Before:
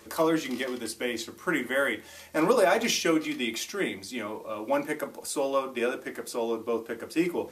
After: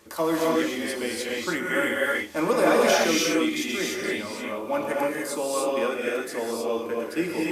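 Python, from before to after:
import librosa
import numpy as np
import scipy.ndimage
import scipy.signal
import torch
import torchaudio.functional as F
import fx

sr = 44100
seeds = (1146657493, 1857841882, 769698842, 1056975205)

p1 = np.sign(x) * np.maximum(np.abs(x) - 10.0 ** (-48.0 / 20.0), 0.0)
p2 = x + (p1 * 10.0 ** (-9.0 / 20.0))
p3 = fx.rev_gated(p2, sr, seeds[0], gate_ms=330, shape='rising', drr_db=-3.5)
y = p3 * 10.0 ** (-3.5 / 20.0)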